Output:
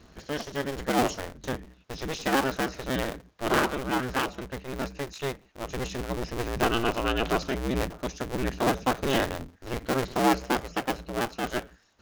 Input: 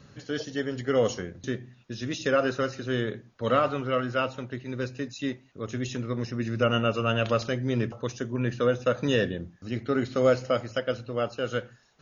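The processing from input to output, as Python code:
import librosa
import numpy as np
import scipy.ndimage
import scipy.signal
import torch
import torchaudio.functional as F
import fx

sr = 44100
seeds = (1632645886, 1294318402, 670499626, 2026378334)

y = fx.cycle_switch(x, sr, every=2, mode='inverted')
y = y * 10.0 ** (-1.0 / 20.0)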